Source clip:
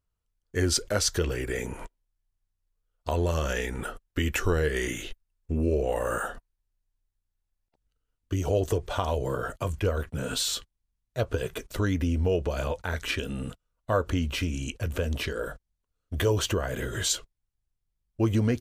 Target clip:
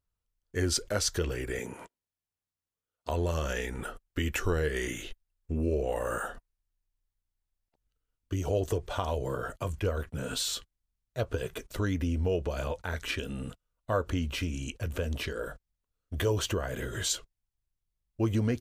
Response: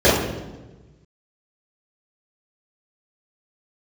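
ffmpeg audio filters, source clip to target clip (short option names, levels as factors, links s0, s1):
-filter_complex "[0:a]asettb=1/sr,asplit=3[s0][s1][s2];[s0]atrim=end=1.594[s3];[s1]atrim=start=1.59:end=3.09,asetpts=PTS-STARTPTS,afade=t=in:d=0.004:c=qsin,afade=t=out:st=1.496:d=0.004:c=qsin,highpass=140[s4];[s2]atrim=start=3.086[s5];[s3][s4]acrossfade=d=0.004:c1=hsin:c2=qsin[s6];[s6][s5]acrossfade=d=0.004:c1=qsin:c2=hsin,volume=0.668"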